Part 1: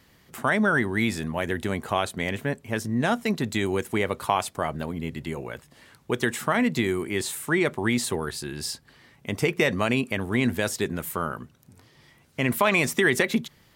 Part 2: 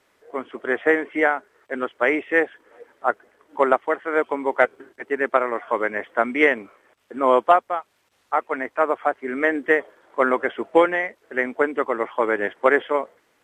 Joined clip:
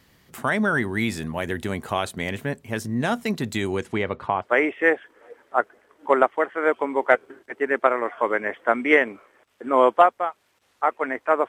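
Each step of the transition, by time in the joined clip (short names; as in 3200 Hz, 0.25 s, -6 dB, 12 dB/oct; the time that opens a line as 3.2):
part 1
3.61–4.47 LPF 12000 Hz -> 1100 Hz
4.43 switch to part 2 from 1.93 s, crossfade 0.08 s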